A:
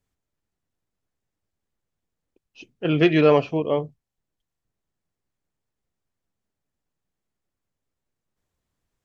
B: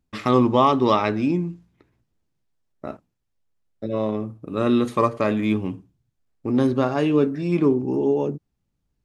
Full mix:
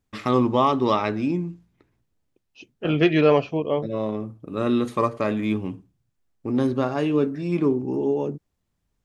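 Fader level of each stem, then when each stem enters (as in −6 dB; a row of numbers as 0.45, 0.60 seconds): −1.0, −2.5 decibels; 0.00, 0.00 seconds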